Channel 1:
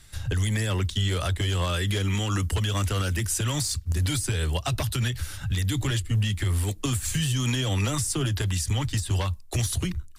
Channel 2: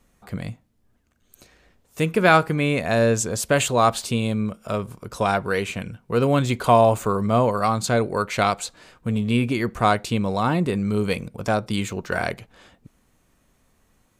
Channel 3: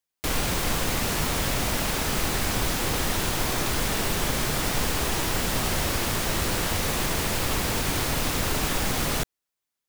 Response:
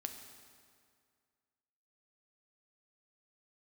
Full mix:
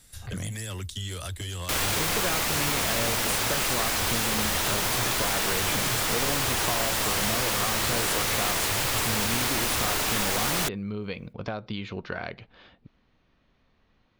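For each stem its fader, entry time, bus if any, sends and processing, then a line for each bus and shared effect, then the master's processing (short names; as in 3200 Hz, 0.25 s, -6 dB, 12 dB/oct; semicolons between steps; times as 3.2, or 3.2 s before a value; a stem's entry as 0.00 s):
-9.0 dB, 0.00 s, bus A, no send, dry
-3.5 dB, 0.00 s, bus A, no send, inverse Chebyshev low-pass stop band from 7700 Hz, stop band 40 dB
+2.0 dB, 1.45 s, no bus, no send, low shelf 370 Hz -12 dB
bus A: 0.0 dB, high shelf 5100 Hz +12 dB; compressor 12:1, threshold -29 dBFS, peak gain reduction 16.5 dB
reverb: off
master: dry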